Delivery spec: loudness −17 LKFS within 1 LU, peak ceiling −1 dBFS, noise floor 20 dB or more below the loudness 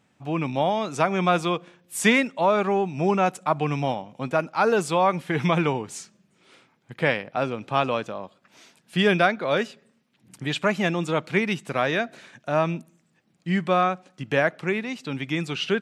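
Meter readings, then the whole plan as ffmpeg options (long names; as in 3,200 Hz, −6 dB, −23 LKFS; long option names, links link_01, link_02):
integrated loudness −24.5 LKFS; sample peak −5.5 dBFS; target loudness −17.0 LKFS
→ -af "volume=7.5dB,alimiter=limit=-1dB:level=0:latency=1"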